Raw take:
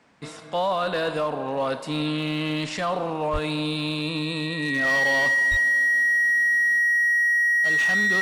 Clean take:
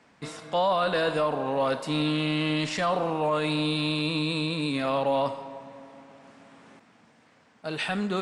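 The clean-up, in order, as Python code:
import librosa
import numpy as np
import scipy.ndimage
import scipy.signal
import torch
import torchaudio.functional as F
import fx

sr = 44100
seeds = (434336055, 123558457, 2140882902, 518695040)

y = fx.fix_declip(x, sr, threshold_db=-18.0)
y = fx.notch(y, sr, hz=1900.0, q=30.0)
y = fx.highpass(y, sr, hz=140.0, slope=24, at=(3.32, 3.44), fade=0.02)
y = fx.highpass(y, sr, hz=140.0, slope=24, at=(5.5, 5.62), fade=0.02)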